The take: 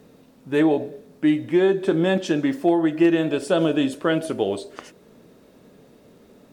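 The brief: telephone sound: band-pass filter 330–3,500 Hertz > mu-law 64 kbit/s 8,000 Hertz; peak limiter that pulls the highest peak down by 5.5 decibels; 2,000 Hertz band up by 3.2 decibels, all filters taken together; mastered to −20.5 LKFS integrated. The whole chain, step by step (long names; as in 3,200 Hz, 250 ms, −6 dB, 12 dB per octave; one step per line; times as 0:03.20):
parametric band 2,000 Hz +4.5 dB
brickwall limiter −12.5 dBFS
band-pass filter 330–3,500 Hz
level +5 dB
mu-law 64 kbit/s 8,000 Hz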